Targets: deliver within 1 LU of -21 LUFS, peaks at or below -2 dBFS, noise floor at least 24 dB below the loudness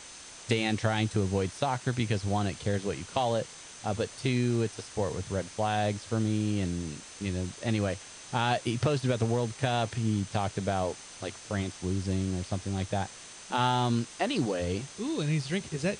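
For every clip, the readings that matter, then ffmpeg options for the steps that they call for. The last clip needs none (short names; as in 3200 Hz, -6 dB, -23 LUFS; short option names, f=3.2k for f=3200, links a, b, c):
steady tone 6200 Hz; tone level -52 dBFS; noise floor -47 dBFS; noise floor target -55 dBFS; loudness -30.5 LUFS; peak -12.5 dBFS; loudness target -21.0 LUFS
-> -af "bandreject=f=6.2k:w=30"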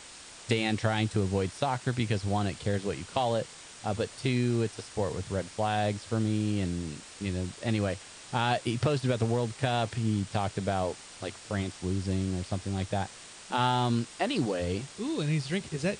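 steady tone none; noise floor -48 dBFS; noise floor target -55 dBFS
-> -af "afftdn=nr=7:nf=-48"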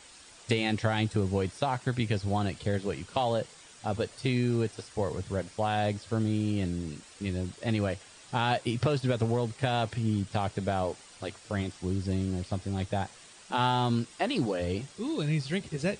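noise floor -53 dBFS; noise floor target -55 dBFS
-> -af "afftdn=nr=6:nf=-53"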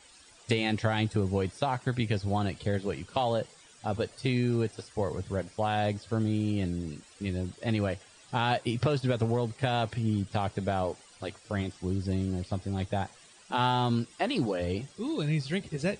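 noise floor -56 dBFS; loudness -31.0 LUFS; peak -12.5 dBFS; loudness target -21.0 LUFS
-> -af "volume=10dB"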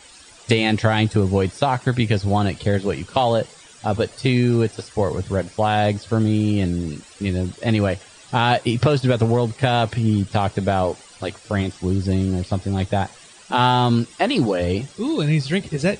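loudness -21.0 LUFS; peak -2.5 dBFS; noise floor -46 dBFS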